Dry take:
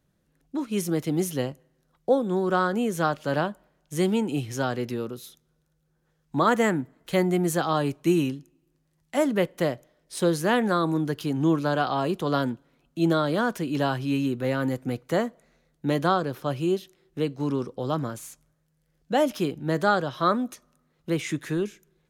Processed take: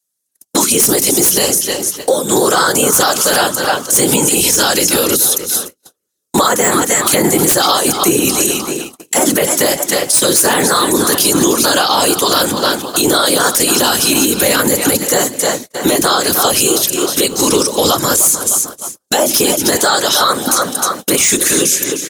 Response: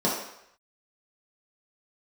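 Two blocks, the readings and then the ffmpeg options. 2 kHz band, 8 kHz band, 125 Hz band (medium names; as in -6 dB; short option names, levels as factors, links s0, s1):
+14.5 dB, +31.5 dB, +3.5 dB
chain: -filter_complex "[0:a]lowpass=9900,equalizer=f=160:t=o:w=0.88:g=-3,bandreject=f=50:t=h:w=6,bandreject=f=100:t=h:w=6,bandreject=f=150:t=h:w=6,bandreject=f=200:t=h:w=6,bandreject=f=250:t=h:w=6,bandreject=f=300:t=h:w=6,bandreject=f=350:t=h:w=6,asplit=2[s0][s1];[s1]adelay=305,lowpass=f=4400:p=1,volume=0.188,asplit=2[s2][s3];[s3]adelay=305,lowpass=f=4400:p=1,volume=0.45,asplit=2[s4][s5];[s5]adelay=305,lowpass=f=4400:p=1,volume=0.45,asplit=2[s6][s7];[s7]adelay=305,lowpass=f=4400:p=1,volume=0.45[s8];[s0][s2][s4][s6][s8]amix=inputs=5:normalize=0,afftfilt=real='hypot(re,im)*cos(2*PI*random(0))':imag='hypot(re,im)*sin(2*PI*random(1))':win_size=512:overlap=0.75,aemphasis=mode=production:type=riaa,acrossover=split=130|610|5300[s9][s10][s11][s12];[s12]aeval=exprs='0.2*sin(PI/2*3.98*val(0)/0.2)':c=same[s13];[s9][s10][s11][s13]amix=inputs=4:normalize=0,deesser=0.6,agate=range=0.01:threshold=0.00178:ratio=16:detection=peak,acompressor=threshold=0.0126:ratio=10,bandreject=f=650:w=15,alimiter=level_in=44.7:limit=0.891:release=50:level=0:latency=1,volume=0.891"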